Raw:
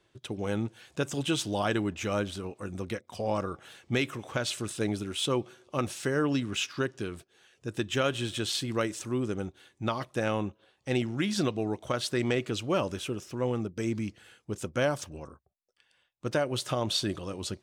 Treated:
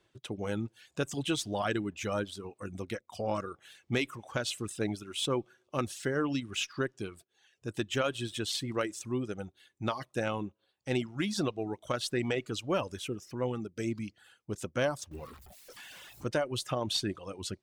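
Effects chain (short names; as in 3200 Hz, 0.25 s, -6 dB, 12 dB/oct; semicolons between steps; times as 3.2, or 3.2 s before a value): 15.11–16.27 zero-crossing step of -40 dBFS; reverb removal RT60 1 s; added harmonics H 2 -24 dB, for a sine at -16 dBFS; gain -2 dB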